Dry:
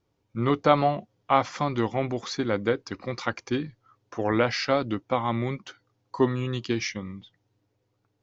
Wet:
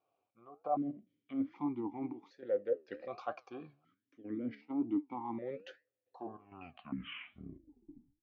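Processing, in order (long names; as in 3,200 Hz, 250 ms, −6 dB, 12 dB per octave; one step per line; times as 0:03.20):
turntable brake at the end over 2.21 s
treble cut that deepens with the level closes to 720 Hz, closed at −18.5 dBFS
dynamic equaliser 2,300 Hz, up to −8 dB, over −48 dBFS, Q 1.4
reversed playback
downward compressor 6 to 1, threshold −30 dBFS, peak gain reduction 13.5 dB
reversed playback
gate pattern "xx..xx.xxxxx" 99 BPM −12 dB
flanger 1.2 Hz, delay 6.3 ms, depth 8.2 ms, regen +79%
formant filter that steps through the vowels 1.3 Hz
level +11.5 dB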